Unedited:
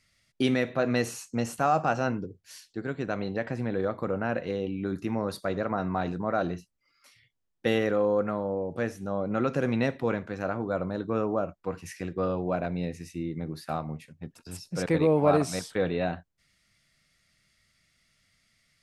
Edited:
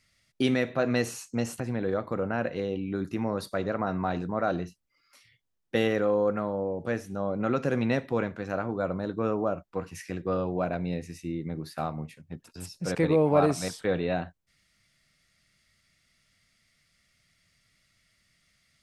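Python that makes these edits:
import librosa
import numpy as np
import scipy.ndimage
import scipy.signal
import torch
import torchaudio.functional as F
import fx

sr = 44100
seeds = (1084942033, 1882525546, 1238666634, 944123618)

y = fx.edit(x, sr, fx.cut(start_s=1.6, length_s=1.91), tone=tone)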